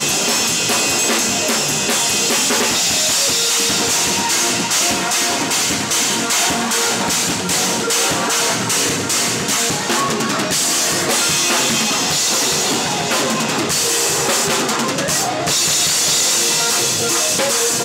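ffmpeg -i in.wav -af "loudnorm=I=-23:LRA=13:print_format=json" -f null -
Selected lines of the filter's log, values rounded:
"input_i" : "-14.5",
"input_tp" : "-5.7",
"input_lra" : "1.5",
"input_thresh" : "-24.5",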